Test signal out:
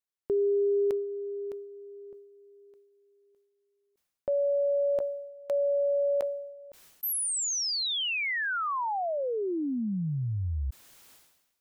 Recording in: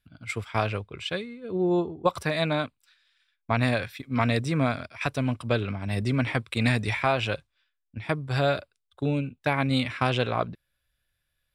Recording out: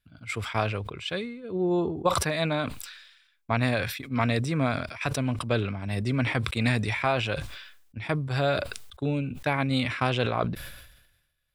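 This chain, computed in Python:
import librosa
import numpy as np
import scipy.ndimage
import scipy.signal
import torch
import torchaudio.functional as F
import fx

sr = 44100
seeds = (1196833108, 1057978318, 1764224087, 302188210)

y = fx.sustainer(x, sr, db_per_s=57.0)
y = y * librosa.db_to_amplitude(-1.5)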